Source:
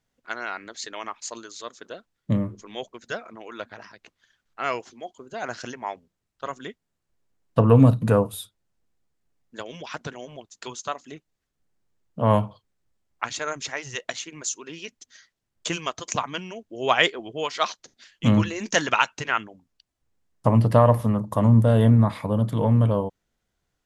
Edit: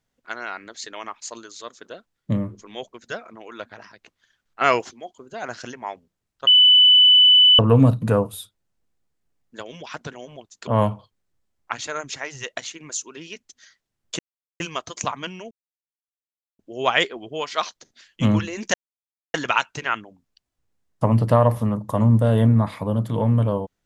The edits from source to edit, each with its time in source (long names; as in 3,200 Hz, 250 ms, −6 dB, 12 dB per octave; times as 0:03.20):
0:04.61–0:04.91: clip gain +9 dB
0:06.47–0:07.59: beep over 2,990 Hz −9 dBFS
0:10.67–0:12.19: remove
0:15.71: splice in silence 0.41 s
0:16.62: splice in silence 1.08 s
0:18.77: splice in silence 0.60 s